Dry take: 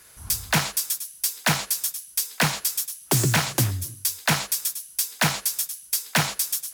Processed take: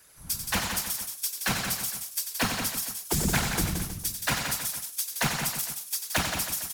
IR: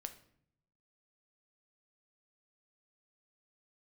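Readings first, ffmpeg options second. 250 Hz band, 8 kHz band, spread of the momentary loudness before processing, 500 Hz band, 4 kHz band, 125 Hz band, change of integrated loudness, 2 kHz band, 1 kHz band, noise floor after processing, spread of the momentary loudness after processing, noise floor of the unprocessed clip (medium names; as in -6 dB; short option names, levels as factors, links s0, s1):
-3.0 dB, -4.5 dB, 6 LU, -4.5 dB, -4.0 dB, -7.0 dB, -4.5 dB, -4.5 dB, -4.0 dB, -44 dBFS, 5 LU, -49 dBFS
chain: -filter_complex "[0:a]afftfilt=real='hypot(re,im)*cos(2*PI*random(0))':imag='hypot(re,im)*sin(2*PI*random(1))':win_size=512:overlap=0.75,asplit=2[s0][s1];[s1]aecho=0:1:92|173|221|319|457:0.398|0.473|0.2|0.211|0.119[s2];[s0][s2]amix=inputs=2:normalize=0"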